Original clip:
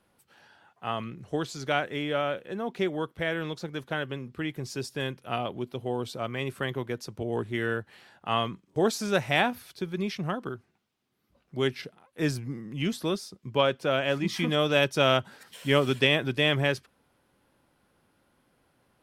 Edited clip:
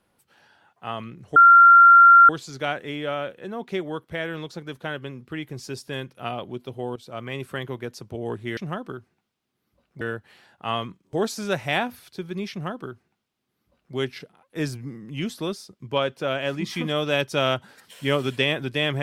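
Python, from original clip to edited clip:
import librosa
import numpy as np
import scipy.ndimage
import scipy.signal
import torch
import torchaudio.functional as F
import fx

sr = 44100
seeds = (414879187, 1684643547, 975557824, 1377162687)

y = fx.edit(x, sr, fx.insert_tone(at_s=1.36, length_s=0.93, hz=1380.0, db=-7.5),
    fx.fade_in_from(start_s=6.03, length_s=0.28, floor_db=-13.0),
    fx.duplicate(start_s=10.14, length_s=1.44, to_s=7.64), tone=tone)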